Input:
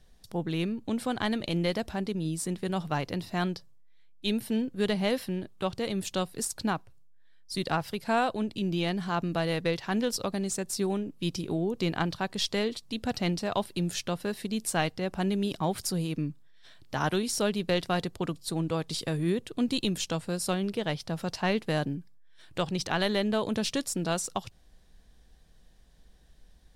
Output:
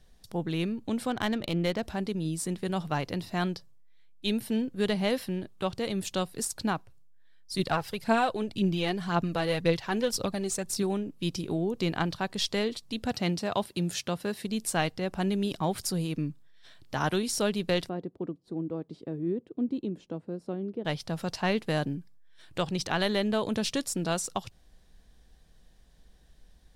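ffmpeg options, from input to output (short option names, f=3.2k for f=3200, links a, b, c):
-filter_complex "[0:a]asettb=1/sr,asplit=3[a][b][c];[a]atrim=end=1.104[d];[b]atrim=start=1.1:end=1.83,asetpts=PTS-STARTPTS,afade=t=in:d=0.004:c=qsin,afade=t=out:st=0.726:d=0.004:c=qsin,adynamicsmooth=sensitivity=7.5:basefreq=2.2k[e];[c]atrim=start=1.826[f];[d][e]acrossfade=d=0.004:c1=hsin:c2=qsin[g];[g][f]acrossfade=d=0.004:c1=qsin:c2=hsin,asettb=1/sr,asplit=3[h][i][j];[h]atrim=end=7.594[k];[i]atrim=start=7.59:end=10.83,asetpts=PTS-STARTPTS,afade=t=in:d=0.004:c=qsin,afade=t=out:st=3.236:d=0.004:c=qsin,aphaser=in_gain=1:out_gain=1:delay=2.8:decay=0.43:speed=1.9:type=triangular[l];[j]atrim=start=10.826[m];[k][l]acrossfade=d=0.004:c1=hsin:c2=qsin[n];[n][m]acrossfade=d=0.004:c1=qsin:c2=hsin,asettb=1/sr,asplit=3[o][p][q];[o]atrim=end=13.134[r];[p]atrim=start=13.13:end=14.45,asetpts=PTS-STARTPTS,afade=t=in:d=0.004:c=qsin,afade=t=out:st=1.316:d=0.004:c=qsin,highpass=55[s];[q]atrim=start=14.446[t];[r][s]acrossfade=d=0.004:c1=hsin:c2=qsin[u];[u][t]acrossfade=d=0.004:c1=qsin:c2=hsin,asettb=1/sr,asplit=3[v][w][x];[v]atrim=end=17.894[y];[w]atrim=start=17.89:end=20.85,asetpts=PTS-STARTPTS,afade=t=in:d=0.004:c=qsin,afade=t=out:st=2.956:d=0.004:c=qsin,bandpass=f=310:t=q:w=1.5[z];[x]atrim=start=20.846[aa];[y][z]acrossfade=d=0.004:c1=hsin:c2=qsin[ab];[ab][aa]acrossfade=d=0.004:c1=qsin:c2=hsin"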